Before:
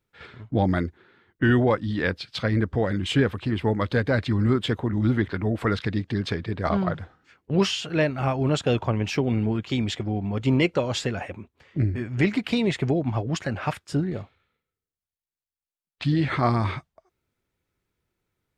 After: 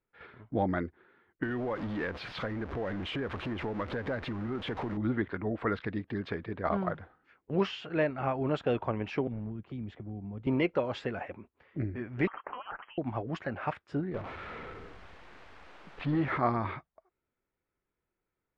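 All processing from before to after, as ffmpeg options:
-filter_complex "[0:a]asettb=1/sr,asplit=3[a][b][c];[a]atrim=end=1.434[d];[b]atrim=start=1.43:end=4.97,asetpts=PTS-STARTPTS,afade=t=in:d=0.004:c=qsin,afade=t=out:st=3.536:d=0.004:c=qsin,aeval=exprs='val(0)+0.5*0.0473*sgn(val(0))':c=same,equalizer=f=8k:w=5.7:g=-4,acompressor=threshold=-22dB:ratio=12:attack=3.2:release=140:knee=1:detection=peak[e];[c]atrim=start=4.966[f];[d][e]acrossfade=d=0.004:c1=hsin:c2=qsin[g];[g][f]acrossfade=d=0.004:c1=qsin:c2=hsin,asettb=1/sr,asplit=3[h][i][j];[h]atrim=end=9.274[k];[i]atrim=start=9.27:end=10.47,asetpts=PTS-STARTPTS,afade=t=in:d=0.004:c=qsin,afade=t=out:st=1.196:d=0.004:c=qsin,equalizer=f=5k:w=0.31:g=-14.5,acrossover=split=210|3000[l][m][n];[m]acompressor=threshold=-41dB:ratio=6:attack=3.2:release=140:knee=2.83:detection=peak[o];[l][o][n]amix=inputs=3:normalize=0,asoftclip=type=hard:threshold=-21.5dB[p];[j]atrim=start=10.466[q];[k][p]acrossfade=d=0.004:c1=hsin:c2=qsin[r];[r][q]acrossfade=d=0.004:c1=qsin:c2=hsin,asettb=1/sr,asplit=3[s][t][u];[s]atrim=end=12.274[v];[t]atrim=start=12.27:end=12.98,asetpts=PTS-STARTPTS,afade=t=in:d=0.004:c=qsin,afade=t=out:st=0.706:d=0.004:c=qsin,highpass=1.3k,lowpass=f=2.9k:t=q:w=0.5098,lowpass=f=2.9k:t=q:w=0.6013,lowpass=f=2.9k:t=q:w=0.9,lowpass=f=2.9k:t=q:w=2.563,afreqshift=-3400[w];[u]atrim=start=12.976[x];[v][w]acrossfade=d=0.004:c1=hsin:c2=qsin[y];[y][x]acrossfade=d=0.004:c1=qsin:c2=hsin,asettb=1/sr,asplit=3[z][aa][ab];[z]atrim=end=14.144[ac];[aa]atrim=start=14.14:end=16.38,asetpts=PTS-STARTPTS,afade=t=in:d=0.004:c=qsin,afade=t=out:st=2.236:d=0.004:c=qsin,aeval=exprs='val(0)+0.5*0.0398*sgn(val(0))':c=same,lowpass=f=3.1k:p=1[ad];[ab]atrim=start=16.376[ae];[ac][ad]acrossfade=d=0.004:c1=hsin:c2=qsin[af];[af][ae]acrossfade=d=0.004:c1=qsin:c2=hsin,lowpass=2k,equalizer=f=100:t=o:w=2.2:g=-8.5,volume=-4dB"

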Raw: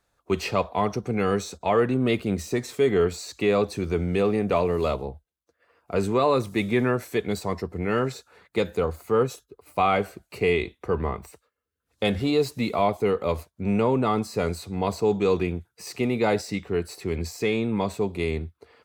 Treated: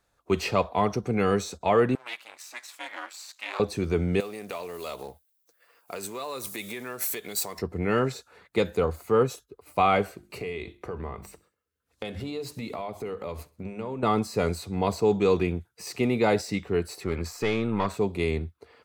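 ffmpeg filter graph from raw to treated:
-filter_complex "[0:a]asettb=1/sr,asplit=3[a][b][c];[a]atrim=end=1.954[d];[b]atrim=start=1.95:end=3.6,asetpts=PTS-STARTPTS,afade=t=in:d=0.004:c=qsin,afade=t=out:st=1.646:d=0.004:c=qsin,aeval=exprs='if(lt(val(0),0),0.447*val(0),val(0))':c=same,highpass=f=820:w=0.5412,highpass=f=820:w=1.3066,aeval=exprs='val(0)*sin(2*PI*120*n/s)':c=same[e];[c]atrim=start=3.596[f];[d][e]acrossfade=d=0.004:c1=hsin:c2=qsin[g];[g][f]acrossfade=d=0.004:c1=qsin:c2=hsin,asettb=1/sr,asplit=3[h][i][j];[h]atrim=end=4.204[k];[i]atrim=start=4.2:end=7.59,asetpts=PTS-STARTPTS,afade=t=in:d=0.004:c=qsin,afade=t=out:st=3.386:d=0.004:c=qsin,acompressor=threshold=-29dB:ratio=8:attack=3.2:release=140:knee=1:detection=peak,aemphasis=mode=production:type=riaa,acrusher=bits=5:mode=log:mix=0:aa=0.000001[l];[j]atrim=start=7.586[m];[k][l]acrossfade=d=0.004:c1=hsin:c2=qsin[n];[n][m]acrossfade=d=0.004:c1=qsin:c2=hsin,asettb=1/sr,asplit=3[o][p][q];[o]atrim=end=10.114[r];[p]atrim=start=10.11:end=14.03,asetpts=PTS-STARTPTS,afade=t=in:d=0.004:c=qsin,afade=t=out:st=3.916:d=0.004:c=qsin,acompressor=threshold=-31dB:ratio=5:attack=3.2:release=140:knee=1:detection=peak,bandreject=f=50:t=h:w=6,bandreject=f=100:t=h:w=6,bandreject=f=150:t=h:w=6,bandreject=f=200:t=h:w=6,bandreject=f=250:t=h:w=6,bandreject=f=300:t=h:w=6,bandreject=f=350:t=h:w=6,aecho=1:1:65|130|195:0.0841|0.0395|0.0186,atrim=end_sample=172872[s];[q]atrim=start=14.026[t];[r][s]acrossfade=d=0.004:c1=hsin:c2=qsin[u];[u][t]acrossfade=d=0.004:c1=qsin:c2=hsin,asettb=1/sr,asplit=3[v][w][x];[v]atrim=end=17.044[y];[w]atrim=start=17.04:end=17.97,asetpts=PTS-STARTPTS,afade=t=in:d=0.004:c=qsin,afade=t=out:st=0.926:d=0.004:c=qsin,equalizer=f=1.3k:t=o:w=0.82:g=12,aeval=exprs='(tanh(7.08*val(0)+0.55)-tanh(0.55))/7.08':c=same[z];[x]atrim=start=17.966[aa];[y][z]acrossfade=d=0.004:c1=hsin:c2=qsin[ab];[ab][aa]acrossfade=d=0.004:c1=qsin:c2=hsin"

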